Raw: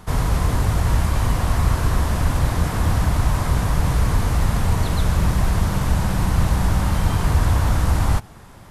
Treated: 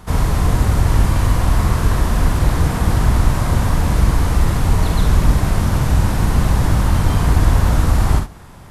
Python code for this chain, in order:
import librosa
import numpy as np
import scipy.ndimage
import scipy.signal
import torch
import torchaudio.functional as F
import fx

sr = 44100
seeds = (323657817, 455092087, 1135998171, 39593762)

y = fx.octave_divider(x, sr, octaves=1, level_db=-2.0)
y = fx.room_early_taps(y, sr, ms=(49, 70), db=(-6.5, -11.0))
y = y * librosa.db_to_amplitude(1.5)